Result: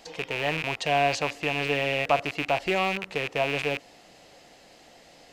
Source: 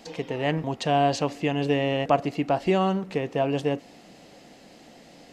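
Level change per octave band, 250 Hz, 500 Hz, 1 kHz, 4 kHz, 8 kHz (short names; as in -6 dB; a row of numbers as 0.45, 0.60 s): -8.5 dB, -3.0 dB, -1.5 dB, +3.5 dB, n/a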